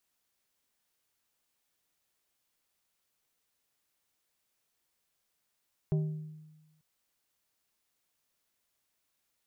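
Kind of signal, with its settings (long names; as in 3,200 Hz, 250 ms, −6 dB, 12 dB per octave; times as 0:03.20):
struck glass plate, lowest mode 155 Hz, decay 1.19 s, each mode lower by 9.5 dB, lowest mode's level −24 dB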